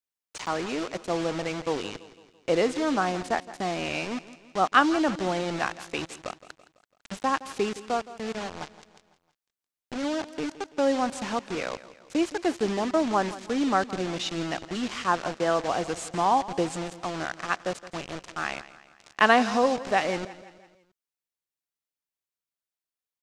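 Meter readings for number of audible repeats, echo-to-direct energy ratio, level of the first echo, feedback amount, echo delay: 4, -15.5 dB, -16.5 dB, 50%, 0.167 s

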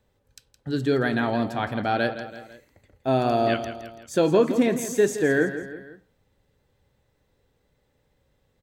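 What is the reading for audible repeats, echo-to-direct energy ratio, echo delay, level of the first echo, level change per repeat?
3, -10.5 dB, 0.166 s, -11.5 dB, -6.0 dB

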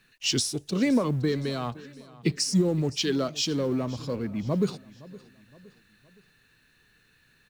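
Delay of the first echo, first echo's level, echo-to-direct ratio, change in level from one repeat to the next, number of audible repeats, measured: 0.516 s, -20.0 dB, -19.0 dB, -7.0 dB, 3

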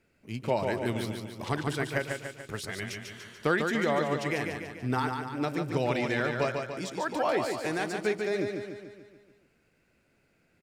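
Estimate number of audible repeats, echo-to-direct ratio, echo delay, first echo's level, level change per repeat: 6, -3.5 dB, 0.145 s, -5.0 dB, -5.0 dB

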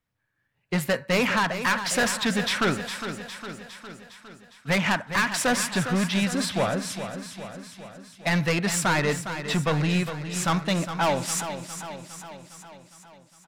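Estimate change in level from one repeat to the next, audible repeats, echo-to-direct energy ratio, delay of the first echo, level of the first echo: -4.5 dB, 6, -8.0 dB, 0.408 s, -10.0 dB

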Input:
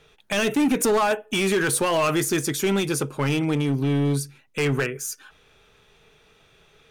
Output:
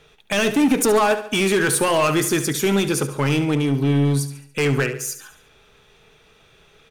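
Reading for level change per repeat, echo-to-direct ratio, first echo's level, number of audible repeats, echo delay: -6.5 dB, -11.5 dB, -12.5 dB, 4, 71 ms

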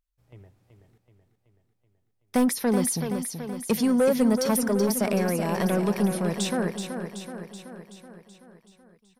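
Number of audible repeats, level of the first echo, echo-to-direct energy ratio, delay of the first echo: 7, -7.5 dB, -5.5 dB, 0.378 s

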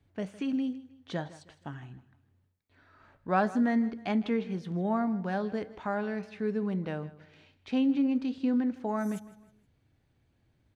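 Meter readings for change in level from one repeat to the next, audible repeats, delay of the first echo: -8.5 dB, 3, 0.158 s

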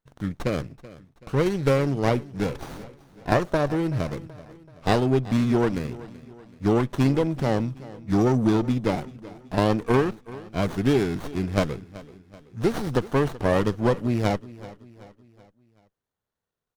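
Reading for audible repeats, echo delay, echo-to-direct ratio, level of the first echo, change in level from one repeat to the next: 3, 0.38 s, -17.5 dB, -18.5 dB, -6.5 dB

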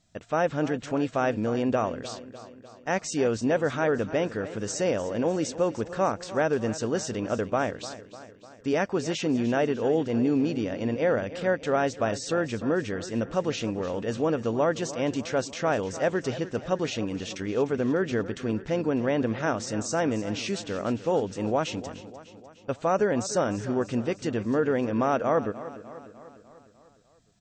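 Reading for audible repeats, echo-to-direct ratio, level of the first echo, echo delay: 5, -13.5 dB, -15.0 dB, 0.3 s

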